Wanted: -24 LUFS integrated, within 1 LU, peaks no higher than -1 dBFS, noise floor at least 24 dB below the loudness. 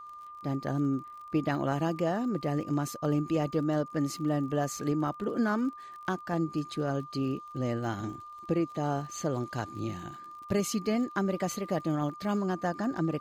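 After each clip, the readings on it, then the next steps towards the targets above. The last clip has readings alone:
tick rate 35 per s; steady tone 1.2 kHz; tone level -43 dBFS; loudness -31.5 LUFS; peak level -15.5 dBFS; loudness target -24.0 LUFS
-> de-click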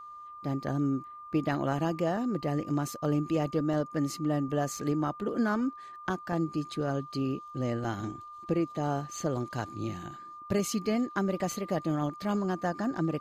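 tick rate 0.15 per s; steady tone 1.2 kHz; tone level -43 dBFS
-> band-stop 1.2 kHz, Q 30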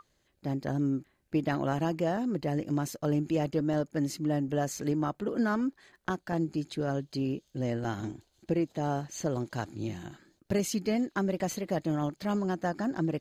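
steady tone not found; loudness -31.5 LUFS; peak level -16.0 dBFS; loudness target -24.0 LUFS
-> trim +7.5 dB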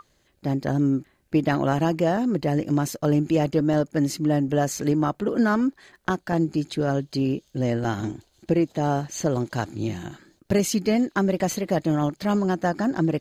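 loudness -24.0 LUFS; peak level -8.5 dBFS; noise floor -66 dBFS

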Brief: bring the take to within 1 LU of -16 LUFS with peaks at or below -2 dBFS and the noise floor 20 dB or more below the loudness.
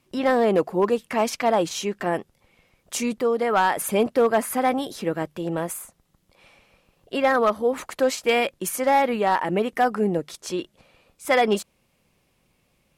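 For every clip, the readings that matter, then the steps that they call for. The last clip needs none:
clipped samples 0.5%; clipping level -12.0 dBFS; loudness -23.0 LUFS; peak level -12.0 dBFS; loudness target -16.0 LUFS
-> clip repair -12 dBFS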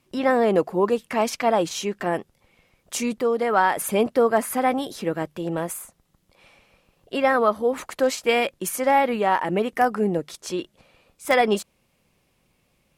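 clipped samples 0.0%; loudness -23.0 LUFS; peak level -5.5 dBFS; loudness target -16.0 LUFS
-> trim +7 dB; peak limiter -2 dBFS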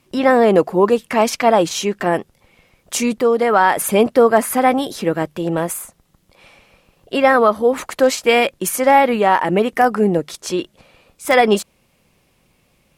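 loudness -16.0 LUFS; peak level -2.0 dBFS; noise floor -61 dBFS

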